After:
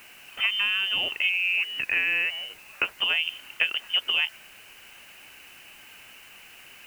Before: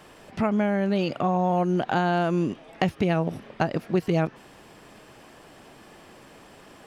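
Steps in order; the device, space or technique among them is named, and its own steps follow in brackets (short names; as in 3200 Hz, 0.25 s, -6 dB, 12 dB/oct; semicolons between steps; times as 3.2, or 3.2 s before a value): 1.29–2.98 HPF 540 Hz 12 dB/oct; scrambled radio voice (BPF 330–2700 Hz; inverted band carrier 3300 Hz; white noise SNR 25 dB); gain +1.5 dB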